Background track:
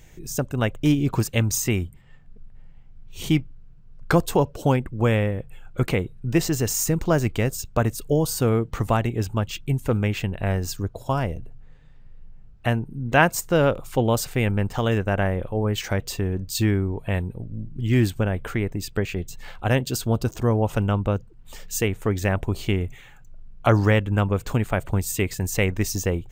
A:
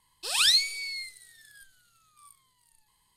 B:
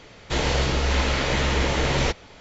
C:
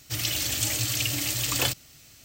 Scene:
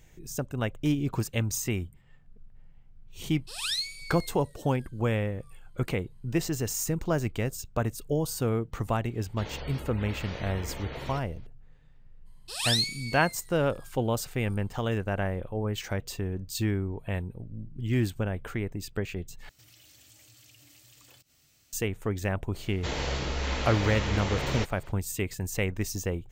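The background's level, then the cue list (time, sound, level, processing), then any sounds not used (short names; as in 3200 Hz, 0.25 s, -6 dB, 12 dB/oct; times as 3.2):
background track -7 dB
3.24 add A -9 dB
9.07 add B -16.5 dB + spectral gate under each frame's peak -25 dB strong
12.25 add A -5 dB, fades 0.02 s
19.49 replace with C -12.5 dB + compressor 4:1, threshold -44 dBFS
22.53 add B -8.5 dB, fades 0.02 s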